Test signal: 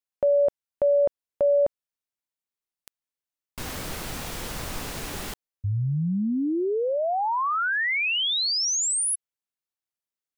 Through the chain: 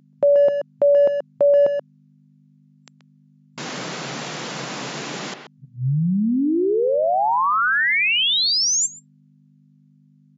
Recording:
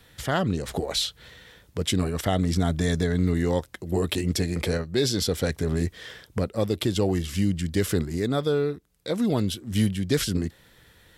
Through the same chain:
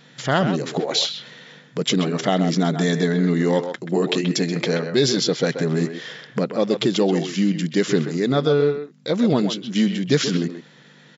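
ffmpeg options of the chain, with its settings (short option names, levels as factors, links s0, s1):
-filter_complex "[0:a]aeval=exprs='val(0)+0.00282*(sin(2*PI*50*n/s)+sin(2*PI*2*50*n/s)/2+sin(2*PI*3*50*n/s)/3+sin(2*PI*4*50*n/s)/4+sin(2*PI*5*50*n/s)/5)':c=same,asplit=2[s0][s1];[s1]adelay=130,highpass=300,lowpass=3400,asoftclip=type=hard:threshold=0.119,volume=0.447[s2];[s0][s2]amix=inputs=2:normalize=0,afftfilt=real='re*between(b*sr/4096,120,7400)':imag='im*between(b*sr/4096,120,7400)':win_size=4096:overlap=0.75,volume=1.88"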